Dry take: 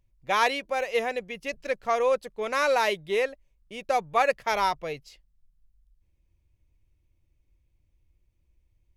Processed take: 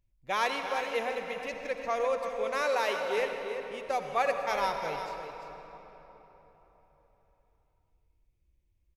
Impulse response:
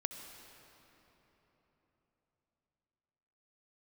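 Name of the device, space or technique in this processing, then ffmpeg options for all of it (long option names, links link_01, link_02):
cave: -filter_complex "[0:a]aecho=1:1:345:0.335[link_01];[1:a]atrim=start_sample=2205[link_02];[link_01][link_02]afir=irnorm=-1:irlink=0,asettb=1/sr,asplit=3[link_03][link_04][link_05];[link_03]atrim=end=2.624[link_06];[link_04]atrim=start=2.62:end=3.18,asetpts=PTS-STARTPTS,afade=type=in:duration=0.004:curve=qsin,afade=type=out:start_time=0.556:duration=0.004:curve=qsin,highpass=250[link_07];[link_05]atrim=start=3.176[link_08];[link_06][link_07]acrossfade=duration=0.004:curve1=hsin:curve2=qsin[link_09];[link_09][link_08]acrossfade=duration=0.004:curve1=qsin:curve2=hsin,volume=-5dB"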